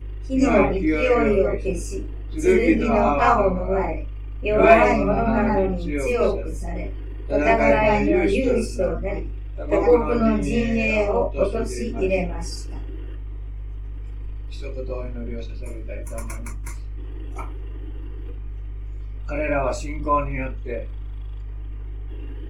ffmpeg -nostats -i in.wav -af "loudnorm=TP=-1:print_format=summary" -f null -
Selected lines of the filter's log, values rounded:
Input Integrated:    -21.5 LUFS
Input True Peak:      -1.3 dBTP
Input LRA:            14.5 LU
Input Threshold:     -33.2 LUFS